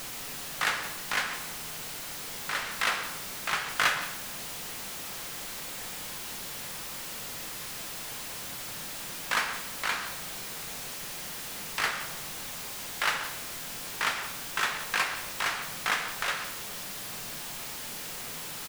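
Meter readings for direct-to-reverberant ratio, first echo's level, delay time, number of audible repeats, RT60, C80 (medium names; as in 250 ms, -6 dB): 5.5 dB, -15.0 dB, 174 ms, 1, 1.0 s, 10.5 dB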